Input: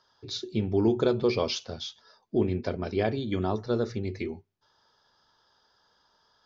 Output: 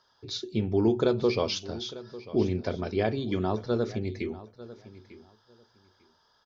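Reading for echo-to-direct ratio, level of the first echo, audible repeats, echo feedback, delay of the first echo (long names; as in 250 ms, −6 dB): −17.0 dB, −17.0 dB, 2, 18%, 897 ms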